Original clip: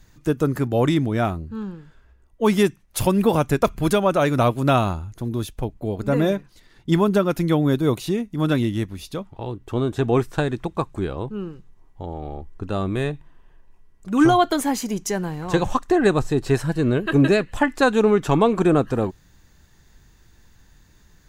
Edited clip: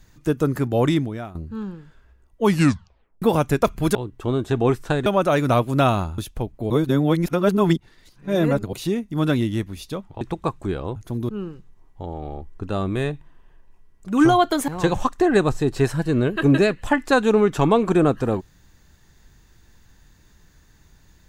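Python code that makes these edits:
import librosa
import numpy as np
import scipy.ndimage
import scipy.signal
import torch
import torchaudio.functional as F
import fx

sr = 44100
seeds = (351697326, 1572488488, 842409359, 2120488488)

y = fx.edit(x, sr, fx.fade_out_to(start_s=0.96, length_s=0.39, curve='qua', floor_db=-15.0),
    fx.tape_stop(start_s=2.45, length_s=0.77),
    fx.move(start_s=5.07, length_s=0.33, to_s=11.29),
    fx.reverse_span(start_s=5.92, length_s=2.03),
    fx.move(start_s=9.43, length_s=1.11, to_s=3.95),
    fx.cut(start_s=14.68, length_s=0.7), tone=tone)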